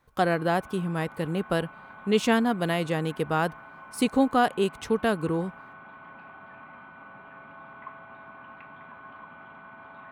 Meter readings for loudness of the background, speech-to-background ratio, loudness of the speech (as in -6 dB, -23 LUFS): -46.0 LUFS, 19.5 dB, -26.5 LUFS